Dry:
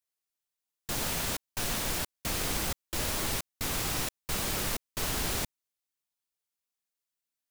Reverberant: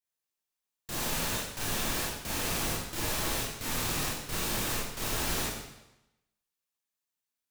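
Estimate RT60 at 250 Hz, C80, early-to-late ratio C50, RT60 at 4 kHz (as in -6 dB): 0.95 s, 3.5 dB, -0.5 dB, 0.90 s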